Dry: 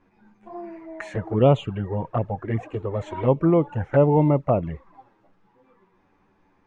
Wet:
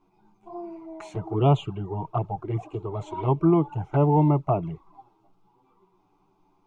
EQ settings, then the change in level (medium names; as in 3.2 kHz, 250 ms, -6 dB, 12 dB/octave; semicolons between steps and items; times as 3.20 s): dynamic bell 1.8 kHz, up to +5 dB, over -37 dBFS, Q 0.94; static phaser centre 350 Hz, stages 8; 0.0 dB